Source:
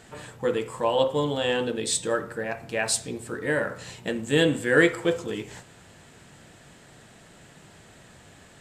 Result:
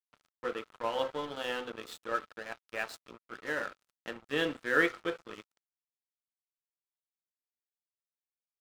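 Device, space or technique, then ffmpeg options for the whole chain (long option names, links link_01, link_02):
pocket radio on a weak battery: -af "highpass=300,lowpass=3100,equalizer=frequency=520:width_type=o:width=2:gain=-4,aeval=exprs='sgn(val(0))*max(abs(val(0))-0.0133,0)':channel_layout=same,equalizer=frequency=1300:width_type=o:width=0.24:gain=9,volume=-4.5dB"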